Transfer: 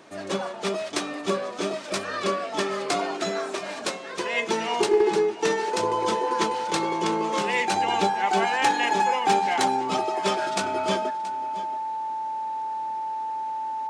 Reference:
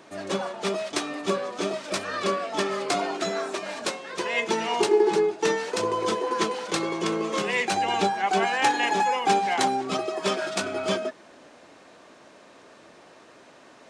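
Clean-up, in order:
clipped peaks rebuilt −12.5 dBFS
notch filter 880 Hz, Q 30
echo removal 677 ms −16 dB

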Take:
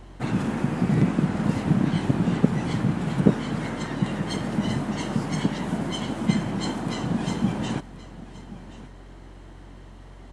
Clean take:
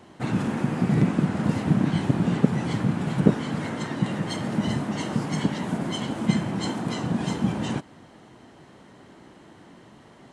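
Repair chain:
hum removal 45.1 Hz, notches 3
echo removal 1,076 ms −17 dB

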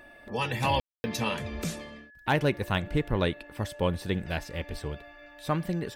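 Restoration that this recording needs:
clipped peaks rebuilt −14 dBFS
notch filter 1,700 Hz, Q 30
ambience match 0:00.80–0:01.04

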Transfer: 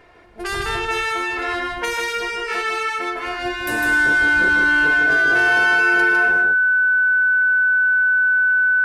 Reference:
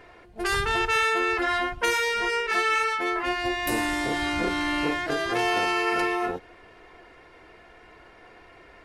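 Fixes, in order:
notch filter 1,500 Hz, Q 30
echo removal 154 ms −3.5 dB

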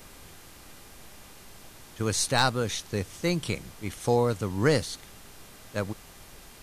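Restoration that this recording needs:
clipped peaks rebuilt −10 dBFS
hum removal 400.6 Hz, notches 36
broadband denoise 23 dB, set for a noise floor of −49 dBFS

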